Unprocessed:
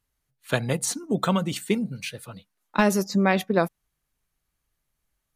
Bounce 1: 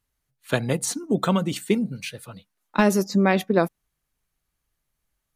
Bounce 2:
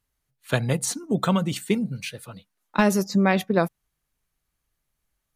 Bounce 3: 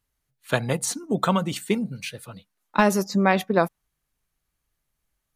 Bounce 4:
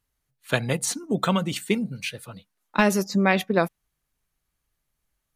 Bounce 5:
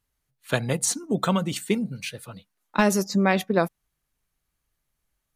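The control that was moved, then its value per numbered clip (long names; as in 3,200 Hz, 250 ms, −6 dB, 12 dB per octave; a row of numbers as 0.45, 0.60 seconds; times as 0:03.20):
dynamic equaliser, frequency: 310, 120, 970, 2,500, 7,200 Hertz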